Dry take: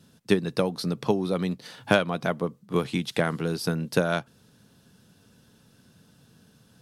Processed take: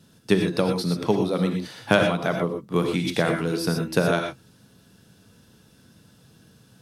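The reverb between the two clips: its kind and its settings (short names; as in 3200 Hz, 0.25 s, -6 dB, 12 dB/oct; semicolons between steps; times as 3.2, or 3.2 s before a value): non-linear reverb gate 0.14 s rising, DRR 3 dB; gain +1.5 dB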